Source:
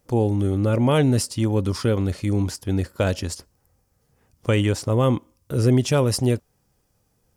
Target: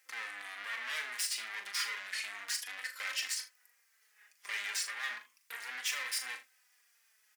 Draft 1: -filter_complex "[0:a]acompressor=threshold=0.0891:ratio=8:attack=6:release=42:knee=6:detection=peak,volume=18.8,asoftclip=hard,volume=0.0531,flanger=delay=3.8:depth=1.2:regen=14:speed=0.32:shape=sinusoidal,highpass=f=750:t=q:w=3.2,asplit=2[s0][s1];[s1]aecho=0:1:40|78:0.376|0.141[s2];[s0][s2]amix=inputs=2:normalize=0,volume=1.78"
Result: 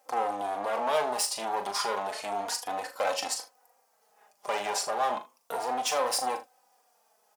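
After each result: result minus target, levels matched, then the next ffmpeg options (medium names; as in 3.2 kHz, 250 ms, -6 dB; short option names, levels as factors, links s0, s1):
1 kHz band +13.0 dB; overload inside the chain: distortion -5 dB
-filter_complex "[0:a]acompressor=threshold=0.0891:ratio=8:attack=6:release=42:knee=6:detection=peak,volume=18.8,asoftclip=hard,volume=0.0531,flanger=delay=3.8:depth=1.2:regen=14:speed=0.32:shape=sinusoidal,highpass=f=1900:t=q:w=3.2,asplit=2[s0][s1];[s1]aecho=0:1:40|78:0.376|0.141[s2];[s0][s2]amix=inputs=2:normalize=0,volume=1.78"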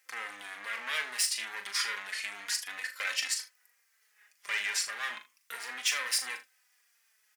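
overload inside the chain: distortion -5 dB
-filter_complex "[0:a]acompressor=threshold=0.0891:ratio=8:attack=6:release=42:knee=6:detection=peak,volume=53.1,asoftclip=hard,volume=0.0188,flanger=delay=3.8:depth=1.2:regen=14:speed=0.32:shape=sinusoidal,highpass=f=1900:t=q:w=3.2,asplit=2[s0][s1];[s1]aecho=0:1:40|78:0.376|0.141[s2];[s0][s2]amix=inputs=2:normalize=0,volume=1.78"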